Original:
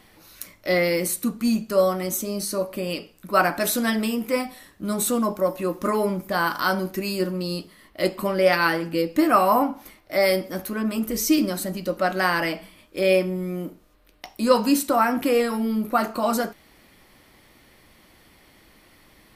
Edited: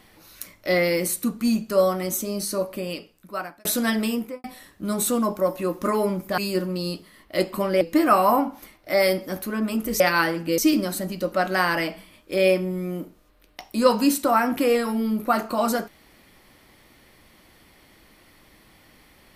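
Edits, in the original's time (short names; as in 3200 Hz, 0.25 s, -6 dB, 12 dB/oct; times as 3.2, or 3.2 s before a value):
2.63–3.65 fade out
4.15–4.44 studio fade out
6.38–7.03 cut
8.46–9.04 move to 11.23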